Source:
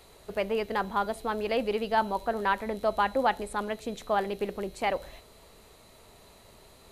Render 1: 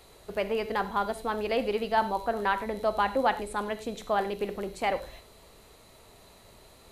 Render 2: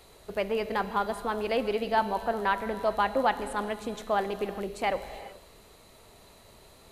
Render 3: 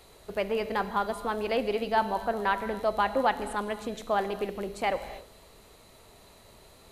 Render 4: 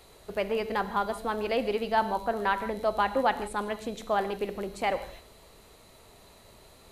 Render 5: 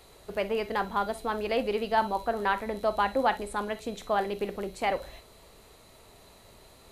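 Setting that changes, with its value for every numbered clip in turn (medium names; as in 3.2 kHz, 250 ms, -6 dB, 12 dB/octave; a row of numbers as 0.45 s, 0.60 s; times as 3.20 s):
gated-style reverb, gate: 120 ms, 450 ms, 300 ms, 190 ms, 80 ms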